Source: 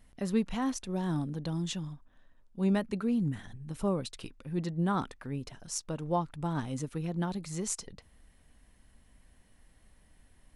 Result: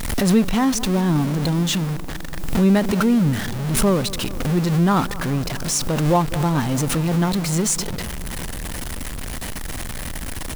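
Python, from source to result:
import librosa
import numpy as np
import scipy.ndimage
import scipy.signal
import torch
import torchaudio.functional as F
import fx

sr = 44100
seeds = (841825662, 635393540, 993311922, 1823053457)

p1 = x + 0.5 * 10.0 ** (-33.0 / 20.0) * np.sign(x)
p2 = fx.echo_bbd(p1, sr, ms=207, stages=2048, feedback_pct=74, wet_db=-18.0)
p3 = fx.quant_dither(p2, sr, seeds[0], bits=8, dither='triangular')
p4 = p2 + (p3 * 10.0 ** (-7.0 / 20.0))
p5 = fx.pre_swell(p4, sr, db_per_s=41.0)
y = p5 * 10.0 ** (7.0 / 20.0)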